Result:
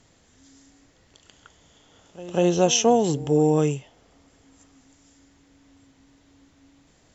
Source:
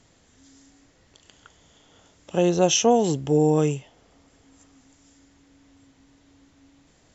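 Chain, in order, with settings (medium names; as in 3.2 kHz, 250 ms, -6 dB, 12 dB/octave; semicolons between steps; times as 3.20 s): pre-echo 193 ms -18.5 dB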